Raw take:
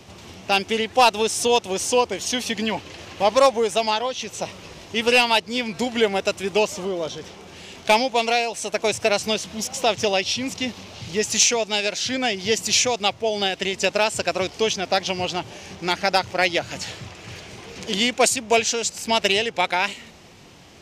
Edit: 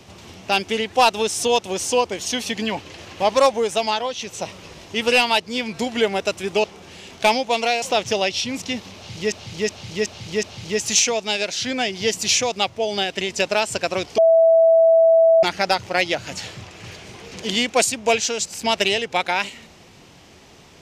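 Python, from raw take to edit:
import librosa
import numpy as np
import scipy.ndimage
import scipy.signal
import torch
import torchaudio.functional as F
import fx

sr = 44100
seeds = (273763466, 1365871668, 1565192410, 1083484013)

y = fx.edit(x, sr, fx.cut(start_s=6.64, length_s=0.65),
    fx.cut(start_s=8.47, length_s=1.27),
    fx.repeat(start_s=10.87, length_s=0.37, count=5),
    fx.bleep(start_s=14.62, length_s=1.25, hz=656.0, db=-10.0), tone=tone)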